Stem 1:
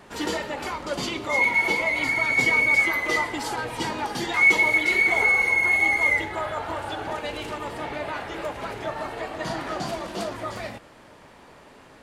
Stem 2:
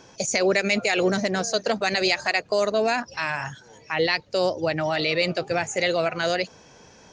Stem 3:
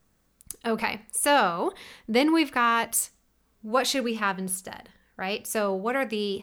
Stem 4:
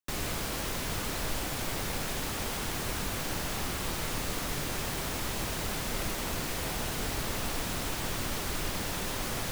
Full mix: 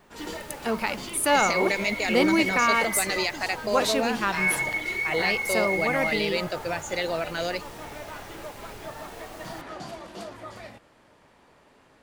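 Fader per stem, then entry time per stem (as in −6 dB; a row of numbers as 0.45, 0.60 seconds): −8.5, −5.5, −0.5, −13.0 decibels; 0.00, 1.15, 0.00, 0.10 seconds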